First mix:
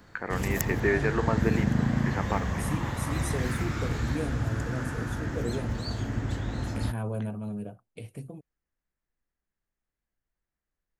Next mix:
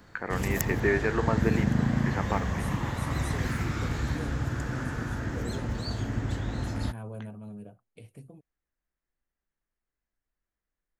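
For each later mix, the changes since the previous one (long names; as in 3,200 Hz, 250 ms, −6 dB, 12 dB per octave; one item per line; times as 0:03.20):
second voice −7.5 dB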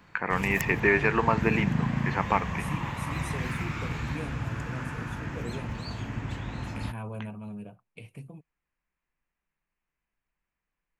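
background −6.0 dB
master: add graphic EQ with 15 bands 160 Hz +7 dB, 1,000 Hz +8 dB, 2,500 Hz +12 dB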